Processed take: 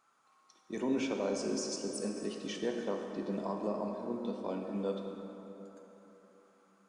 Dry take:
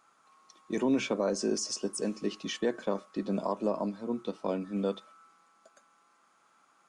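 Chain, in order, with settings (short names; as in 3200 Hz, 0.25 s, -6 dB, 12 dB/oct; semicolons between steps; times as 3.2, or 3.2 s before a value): plate-style reverb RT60 3.7 s, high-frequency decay 0.55×, DRR 2 dB; gain -6.5 dB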